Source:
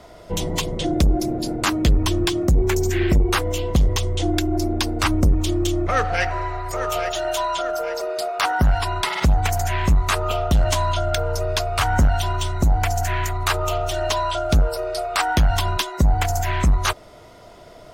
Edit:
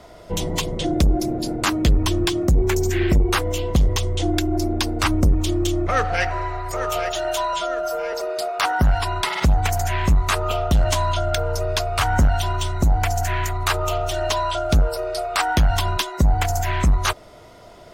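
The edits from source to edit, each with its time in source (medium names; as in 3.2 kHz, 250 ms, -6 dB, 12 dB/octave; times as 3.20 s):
7.53–7.93 s: stretch 1.5×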